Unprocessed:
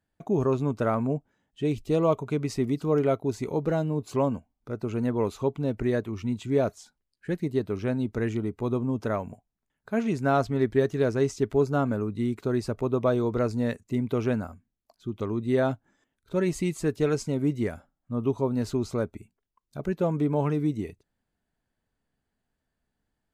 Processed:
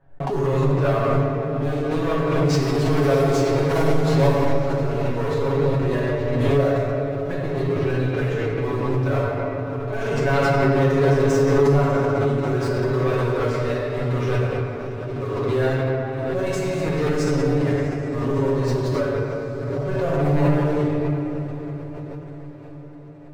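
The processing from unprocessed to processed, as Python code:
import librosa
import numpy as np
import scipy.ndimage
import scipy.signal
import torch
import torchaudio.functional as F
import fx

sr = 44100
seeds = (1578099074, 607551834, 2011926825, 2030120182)

y = fx.zero_step(x, sr, step_db=-33.5, at=(2.45, 4.71))
y = fx.env_lowpass(y, sr, base_hz=980.0, full_db=-20.0)
y = fx.comb_fb(y, sr, f0_hz=150.0, decay_s=0.44, harmonics='all', damping=0.0, mix_pct=70)
y = fx.leveller(y, sr, passes=3)
y = fx.peak_eq(y, sr, hz=220.0, db=-12.0, octaves=0.7)
y = fx.hum_notches(y, sr, base_hz=50, count=8)
y = y + 0.78 * np.pad(y, (int(7.2 * sr / 1000.0), 0))[:len(y)]
y = fx.echo_diffused(y, sr, ms=654, feedback_pct=59, wet_db=-14.5)
y = fx.room_shoebox(y, sr, seeds[0], volume_m3=150.0, walls='hard', distance_m=1.0)
y = fx.pre_swell(y, sr, db_per_s=22.0)
y = y * 10.0 ** (-4.0 / 20.0)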